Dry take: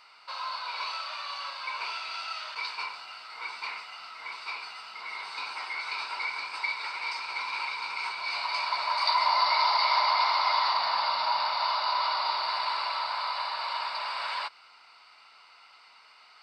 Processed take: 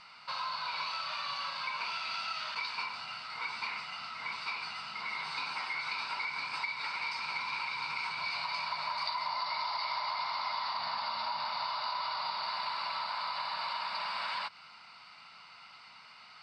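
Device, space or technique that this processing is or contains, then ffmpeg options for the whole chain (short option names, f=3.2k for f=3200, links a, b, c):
jukebox: -af "lowpass=7.4k,lowshelf=f=260:t=q:w=1.5:g=12.5,acompressor=threshold=-35dB:ratio=6,volume=2dB"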